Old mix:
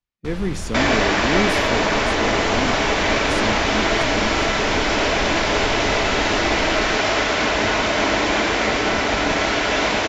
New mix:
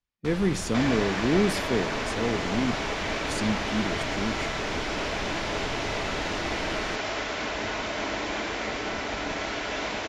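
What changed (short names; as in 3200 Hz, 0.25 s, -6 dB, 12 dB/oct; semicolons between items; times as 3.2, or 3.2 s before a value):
first sound: add low shelf 140 Hz -10.5 dB; second sound -11.5 dB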